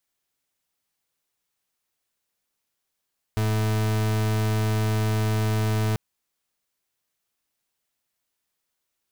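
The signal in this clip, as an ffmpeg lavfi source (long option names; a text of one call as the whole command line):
ffmpeg -f lavfi -i "aevalsrc='0.0708*(2*lt(mod(108*t,1),0.39)-1)':duration=2.59:sample_rate=44100" out.wav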